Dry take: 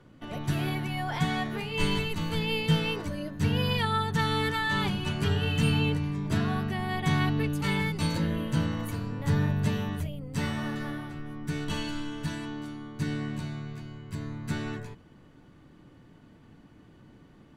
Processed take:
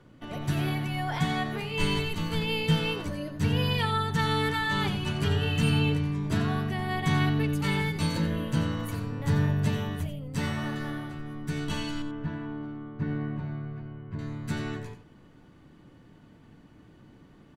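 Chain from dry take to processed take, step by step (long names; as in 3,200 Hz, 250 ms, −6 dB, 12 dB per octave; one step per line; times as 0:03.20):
0:12.02–0:14.19: low-pass filter 1,500 Hz 12 dB per octave
single-tap delay 89 ms −11.5 dB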